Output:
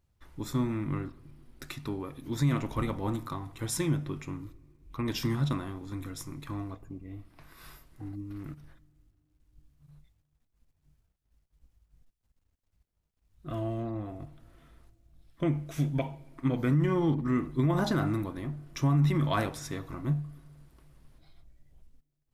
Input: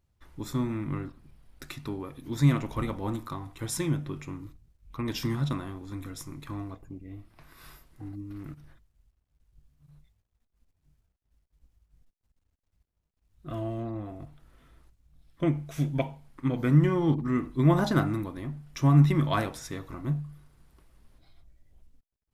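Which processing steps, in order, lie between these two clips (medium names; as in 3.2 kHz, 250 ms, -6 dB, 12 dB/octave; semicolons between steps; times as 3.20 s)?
on a send at -24 dB: reverberation RT60 2.9 s, pre-delay 6 ms; on the sum: peak limiter -18 dBFS, peak gain reduction 9 dB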